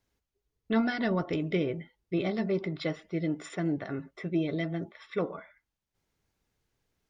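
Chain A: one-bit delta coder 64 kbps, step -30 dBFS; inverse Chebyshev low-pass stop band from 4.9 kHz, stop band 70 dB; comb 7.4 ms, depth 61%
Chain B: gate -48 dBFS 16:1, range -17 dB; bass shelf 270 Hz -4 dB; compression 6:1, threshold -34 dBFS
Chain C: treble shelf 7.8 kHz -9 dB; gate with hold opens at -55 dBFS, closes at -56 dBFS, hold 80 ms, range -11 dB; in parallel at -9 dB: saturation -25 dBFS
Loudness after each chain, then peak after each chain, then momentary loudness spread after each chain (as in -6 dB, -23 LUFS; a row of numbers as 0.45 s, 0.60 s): -32.5 LUFS, -39.5 LUFS, -30.0 LUFS; -16.0 dBFS, -25.0 dBFS, -14.5 dBFS; 11 LU, 5 LU, 8 LU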